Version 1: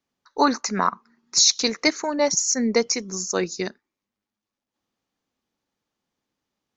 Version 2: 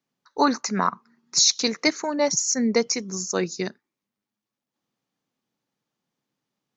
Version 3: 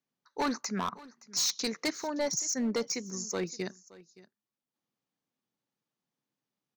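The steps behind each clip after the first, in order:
resonant low shelf 100 Hz -8.5 dB, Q 3; gain -1.5 dB
hard clip -18 dBFS, distortion -10 dB; echo 0.57 s -20.5 dB; gain -7.5 dB

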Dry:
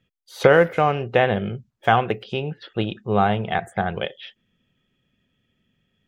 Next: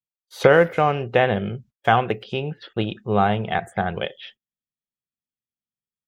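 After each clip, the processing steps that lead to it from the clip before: gate -46 dBFS, range -34 dB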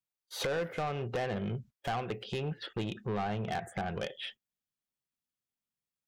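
compressor 3:1, threshold -29 dBFS, peak gain reduction 14.5 dB; soft clip -28.5 dBFS, distortion -9 dB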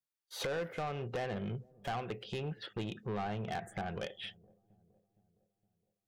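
dark delay 0.464 s, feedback 49%, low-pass 410 Hz, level -21.5 dB; gain -3.5 dB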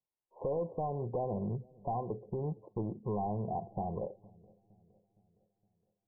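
brick-wall FIR low-pass 1100 Hz; gain +3 dB

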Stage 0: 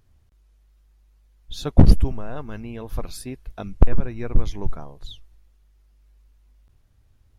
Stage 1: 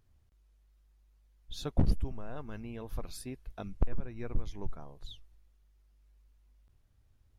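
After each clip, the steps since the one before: compressor 1.5:1, threshold -26 dBFS, peak gain reduction 8 dB; gain -8 dB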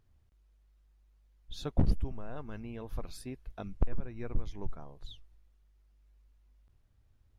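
high shelf 5800 Hz -6 dB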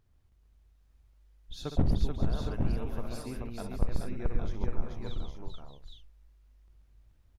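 tapped delay 63/136/433/621/813/856 ms -9.5/-5.5/-3.5/-11.5/-4.5/-9 dB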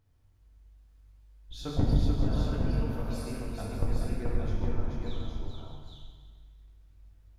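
reverb RT60 1.7 s, pre-delay 5 ms, DRR -2 dB; gain -2 dB

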